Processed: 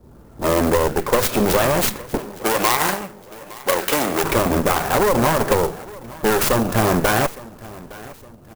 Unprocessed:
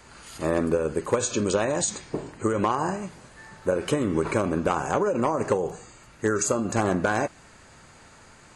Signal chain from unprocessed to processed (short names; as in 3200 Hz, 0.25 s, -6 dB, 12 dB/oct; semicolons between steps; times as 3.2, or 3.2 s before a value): low-pass opened by the level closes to 360 Hz, open at -20.5 dBFS; added harmonics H 3 -19 dB, 4 -10 dB, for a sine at -12 dBFS; in parallel at 0 dB: level quantiser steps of 10 dB; on the sum: soft clip -16.5 dBFS, distortion -9 dB; 2.18–4.24 RIAA curve recording; on a send: feedback echo 0.863 s, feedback 41%, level -20 dB; on the sum: clock jitter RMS 0.049 ms; gain +7.5 dB